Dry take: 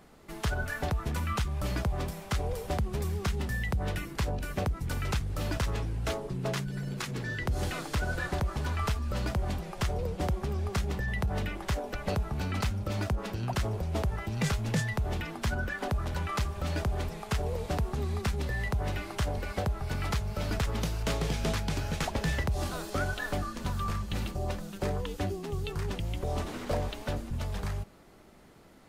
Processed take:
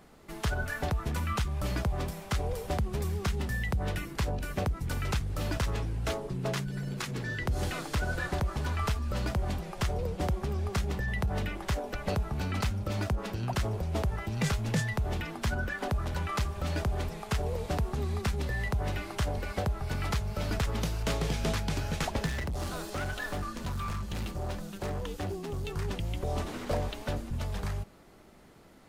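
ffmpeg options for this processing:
ffmpeg -i in.wav -filter_complex "[0:a]asettb=1/sr,asplit=3[link_01][link_02][link_03];[link_01]atrim=end=22.264[link_04];[link_02]atrim=start=22.26:end=25.77,asetpts=PTS-STARTPTS,afade=type=in:duration=0.004:curve=qsin,afade=type=out:start_time=3.506:duration=0.004:curve=qsin,volume=30.5dB,asoftclip=hard,volume=-30.5dB[link_05];[link_03]atrim=start=25.766[link_06];[link_04][link_05]acrossfade=duration=0.004:curve1=hsin:curve2=qsin[link_07];[link_07][link_06]acrossfade=duration=0.004:curve1=qsin:curve2=hsin" out.wav

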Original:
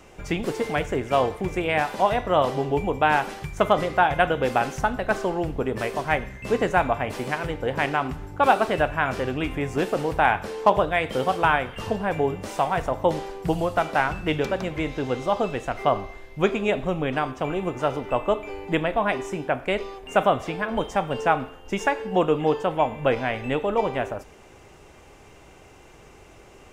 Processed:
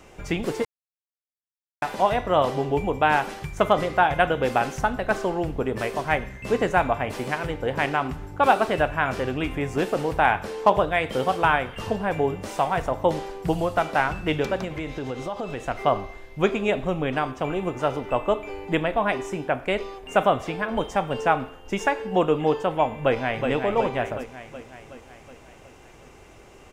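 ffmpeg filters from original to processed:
ffmpeg -i in.wav -filter_complex "[0:a]asettb=1/sr,asplit=3[link_01][link_02][link_03];[link_01]atrim=end=14.644[link_04];[link_02]atrim=start=14.64:end=15.61,asetpts=PTS-STARTPTS,afade=type=in:duration=0.004:curve=qsin,afade=type=out:start_time=0.966:duration=0.004:curve=qsin,acompressor=threshold=-26dB:ratio=6:attack=3.2:release=140:knee=1:detection=peak[link_05];[link_03]atrim=start=15.606[link_06];[link_04][link_05]acrossfade=duration=0.004:curve1=hsin:curve2=qsin[link_07];[link_07][link_06]acrossfade=duration=0.004:curve1=qsin:curve2=hsin,asplit=2[link_08][link_09];[link_09]afade=type=in:start_time=22.99:duration=0.01,afade=type=out:start_time=23.49:duration=0.01,aecho=0:1:370|740|1110|1480|1850|2220|2590|2960:0.501187|0.300712|0.180427|0.108256|0.0649539|0.0389723|0.0233834|0.01403[link_10];[link_08][link_10]amix=inputs=2:normalize=0,asplit=3[link_11][link_12][link_13];[link_11]atrim=end=0.65,asetpts=PTS-STARTPTS,afade=type=out:start_time=0.646:duration=0.004:curve=hsin[link_14];[link_12]atrim=start=0.65:end=1.82,asetpts=PTS-STARTPTS,volume=0[link_15];[link_13]atrim=start=1.82,asetpts=PTS-STARTPTS,afade=type=in:duration=0.004:curve=hsin[link_16];[link_14][link_15][link_16]concat=n=3:v=0:a=1" out.wav

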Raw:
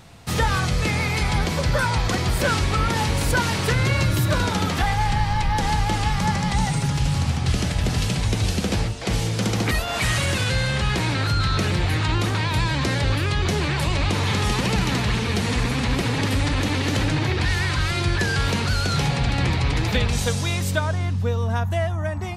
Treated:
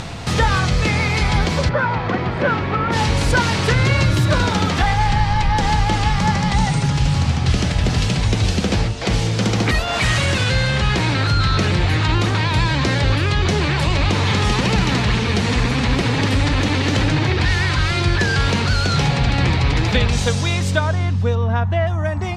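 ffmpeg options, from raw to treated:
ffmpeg -i in.wav -filter_complex "[0:a]asplit=3[link_01][link_02][link_03];[link_01]afade=type=out:start_time=1.68:duration=0.02[link_04];[link_02]highpass=130,lowpass=2000,afade=type=in:start_time=1.68:duration=0.02,afade=type=out:start_time=2.91:duration=0.02[link_05];[link_03]afade=type=in:start_time=2.91:duration=0.02[link_06];[link_04][link_05][link_06]amix=inputs=3:normalize=0,asettb=1/sr,asplit=3[link_07][link_08][link_09];[link_07]atrim=end=21.354[link_10];[link_08]atrim=start=21.35:end=21.87,asetpts=PTS-STARTPTS,afade=type=in:duration=0.004:curve=qsin,afade=type=out:start_time=0.516:duration=0.004:curve=qsin,lowpass=3300[link_11];[link_09]atrim=start=21.866[link_12];[link_10][link_11]acrossfade=duration=0.004:curve1=hsin:curve2=qsin[link_13];[link_13][link_12]acrossfade=duration=0.004:curve1=qsin:curve2=hsin,acompressor=mode=upward:threshold=-22dB:ratio=2.5,lowpass=6900,volume=4.5dB" out.wav

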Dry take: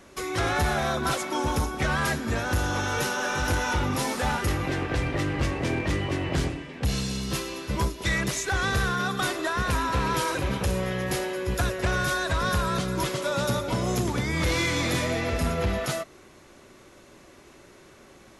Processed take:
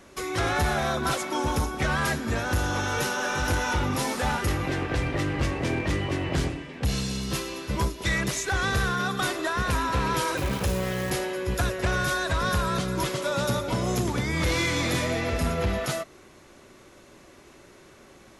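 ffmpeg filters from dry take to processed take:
ffmpeg -i in.wav -filter_complex "[0:a]asettb=1/sr,asplit=3[link_01][link_02][link_03];[link_01]atrim=end=10.374[link_04];[link_02]atrim=start=10.37:end=11.1,asetpts=PTS-STARTPTS,afade=type=in:duration=0.004:curve=qsin,afade=type=out:start_time=0.726:duration=0.004:curve=qsin,acrusher=bits=7:dc=4:mix=0:aa=0.000001[link_05];[link_03]atrim=start=11.096[link_06];[link_04][link_05]acrossfade=duration=0.004:curve1=hsin:curve2=qsin[link_07];[link_07][link_06]acrossfade=duration=0.004:curve1=qsin:curve2=hsin" out.wav

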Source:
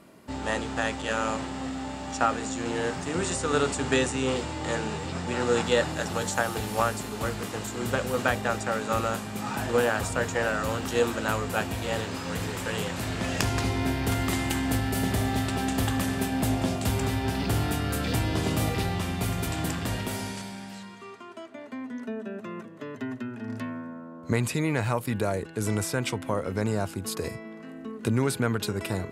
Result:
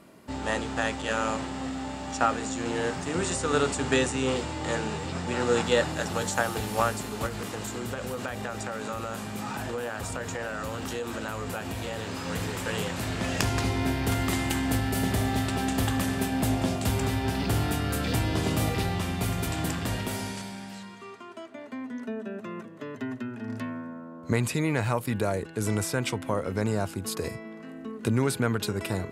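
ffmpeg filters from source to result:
ffmpeg -i in.wav -filter_complex "[0:a]asettb=1/sr,asplit=3[link_01][link_02][link_03];[link_01]atrim=end=7.264[link_04];[link_02]atrim=start=7.26:end=12.22,asetpts=PTS-STARTPTS,afade=type=in:duration=0.004:curve=qsin,afade=type=out:start_time=4.956:duration=0.004:curve=qsin,acompressor=threshold=-29dB:ratio=6:attack=3.2:release=140:knee=1:detection=peak[link_05];[link_03]atrim=start=12.216[link_06];[link_04][link_05]acrossfade=duration=0.004:curve1=hsin:curve2=qsin[link_07];[link_07][link_06]acrossfade=duration=0.004:curve1=qsin:curve2=hsin" out.wav

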